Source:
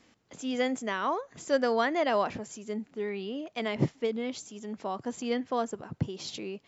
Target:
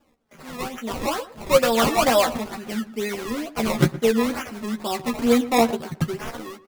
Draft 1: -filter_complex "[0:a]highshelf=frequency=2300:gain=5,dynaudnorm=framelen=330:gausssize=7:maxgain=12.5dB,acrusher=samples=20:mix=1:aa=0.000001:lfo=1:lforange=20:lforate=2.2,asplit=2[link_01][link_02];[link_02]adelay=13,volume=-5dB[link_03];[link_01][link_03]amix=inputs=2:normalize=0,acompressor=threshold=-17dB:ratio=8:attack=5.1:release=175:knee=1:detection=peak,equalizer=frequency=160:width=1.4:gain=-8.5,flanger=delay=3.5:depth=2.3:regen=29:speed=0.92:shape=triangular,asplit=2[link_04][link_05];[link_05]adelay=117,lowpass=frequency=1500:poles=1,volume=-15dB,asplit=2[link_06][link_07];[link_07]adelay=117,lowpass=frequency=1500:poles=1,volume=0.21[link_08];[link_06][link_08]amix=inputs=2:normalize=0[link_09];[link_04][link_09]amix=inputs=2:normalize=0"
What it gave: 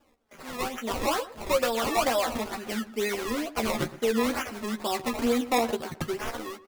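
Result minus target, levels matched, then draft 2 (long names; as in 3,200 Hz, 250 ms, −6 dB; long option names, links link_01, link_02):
downward compressor: peak gain reduction +11.5 dB; 125 Hz band −6.0 dB
-filter_complex "[0:a]highshelf=frequency=2300:gain=5,dynaudnorm=framelen=330:gausssize=7:maxgain=12.5dB,acrusher=samples=20:mix=1:aa=0.000001:lfo=1:lforange=20:lforate=2.2,asplit=2[link_01][link_02];[link_02]adelay=13,volume=-5dB[link_03];[link_01][link_03]amix=inputs=2:normalize=0,flanger=delay=3.5:depth=2.3:regen=29:speed=0.92:shape=triangular,asplit=2[link_04][link_05];[link_05]adelay=117,lowpass=frequency=1500:poles=1,volume=-15dB,asplit=2[link_06][link_07];[link_07]adelay=117,lowpass=frequency=1500:poles=1,volume=0.21[link_08];[link_06][link_08]amix=inputs=2:normalize=0[link_09];[link_04][link_09]amix=inputs=2:normalize=0"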